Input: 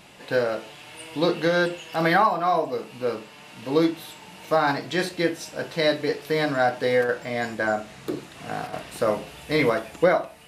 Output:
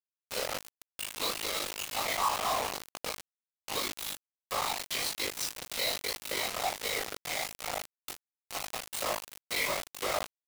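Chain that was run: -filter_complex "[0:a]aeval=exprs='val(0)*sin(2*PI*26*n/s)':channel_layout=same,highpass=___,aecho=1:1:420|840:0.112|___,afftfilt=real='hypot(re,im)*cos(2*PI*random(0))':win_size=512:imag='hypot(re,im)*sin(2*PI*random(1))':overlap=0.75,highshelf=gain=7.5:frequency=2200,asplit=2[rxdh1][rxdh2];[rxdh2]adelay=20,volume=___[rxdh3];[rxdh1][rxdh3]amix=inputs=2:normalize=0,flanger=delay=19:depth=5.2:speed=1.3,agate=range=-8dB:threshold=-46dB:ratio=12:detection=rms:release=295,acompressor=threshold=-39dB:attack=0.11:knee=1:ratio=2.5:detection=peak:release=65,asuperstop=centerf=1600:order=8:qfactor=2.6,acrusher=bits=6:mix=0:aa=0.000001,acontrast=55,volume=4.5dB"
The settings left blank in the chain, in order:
890, 0.0269, -5dB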